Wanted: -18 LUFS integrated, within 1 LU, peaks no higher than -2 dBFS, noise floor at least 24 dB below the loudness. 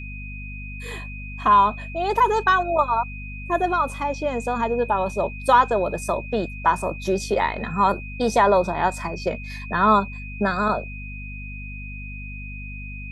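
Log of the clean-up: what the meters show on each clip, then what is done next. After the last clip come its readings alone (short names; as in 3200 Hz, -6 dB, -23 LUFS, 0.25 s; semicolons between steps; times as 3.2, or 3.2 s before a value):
hum 50 Hz; harmonics up to 250 Hz; hum level -33 dBFS; steady tone 2500 Hz; tone level -37 dBFS; loudness -22.0 LUFS; peak -5.0 dBFS; loudness target -18.0 LUFS
-> de-hum 50 Hz, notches 5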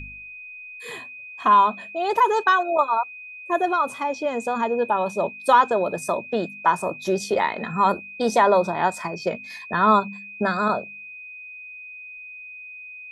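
hum none; steady tone 2500 Hz; tone level -37 dBFS
-> notch 2500 Hz, Q 30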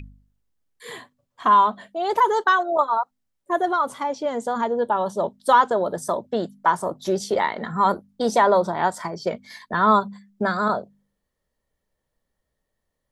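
steady tone none; loudness -22.0 LUFS; peak -5.0 dBFS; loudness target -18.0 LUFS
-> gain +4 dB; limiter -2 dBFS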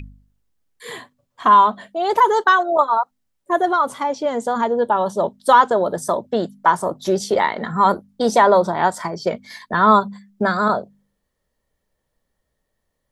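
loudness -18.0 LUFS; peak -2.0 dBFS; noise floor -75 dBFS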